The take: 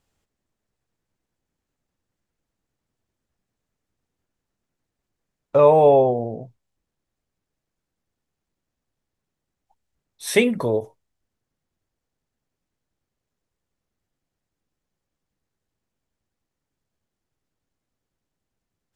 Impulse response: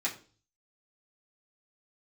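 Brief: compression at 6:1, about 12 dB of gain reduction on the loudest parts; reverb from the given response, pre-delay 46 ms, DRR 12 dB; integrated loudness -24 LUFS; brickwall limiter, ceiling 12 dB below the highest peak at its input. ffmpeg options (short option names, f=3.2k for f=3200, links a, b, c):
-filter_complex "[0:a]acompressor=threshold=-23dB:ratio=6,alimiter=limit=-24dB:level=0:latency=1,asplit=2[a][b];[1:a]atrim=start_sample=2205,adelay=46[c];[b][c]afir=irnorm=-1:irlink=0,volume=-17.5dB[d];[a][d]amix=inputs=2:normalize=0,volume=9dB"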